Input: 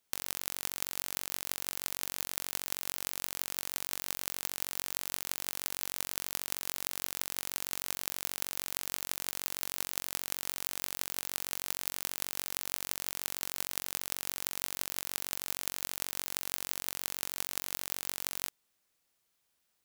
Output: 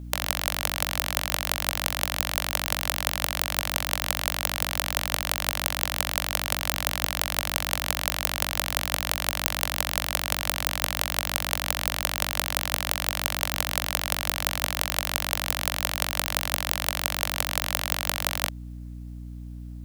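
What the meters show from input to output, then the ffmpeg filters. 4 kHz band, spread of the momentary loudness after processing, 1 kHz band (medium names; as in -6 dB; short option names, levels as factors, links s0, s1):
+12.0 dB, 1 LU, +16.0 dB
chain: -filter_complex "[0:a]acrossover=split=350|5200[s0][s1][s2];[s0]acrusher=bits=5:dc=4:mix=0:aa=0.000001[s3];[s1]highpass=f=590:t=q:w=3.5[s4];[s3][s4][s2]amix=inputs=3:normalize=0,aeval=exprs='val(0)+0.00447*(sin(2*PI*60*n/s)+sin(2*PI*2*60*n/s)/2+sin(2*PI*3*60*n/s)/3+sin(2*PI*4*60*n/s)/4+sin(2*PI*5*60*n/s)/5)':c=same,aeval=exprs='0.447*(cos(1*acos(clip(val(0)/0.447,-1,1)))-cos(1*PI/2))+0.0891*(cos(5*acos(clip(val(0)/0.447,-1,1)))-cos(5*PI/2))+0.178*(cos(6*acos(clip(val(0)/0.447,-1,1)))-cos(6*PI/2))+0.0794*(cos(8*acos(clip(val(0)/0.447,-1,1)))-cos(8*PI/2))':c=same,volume=1.68"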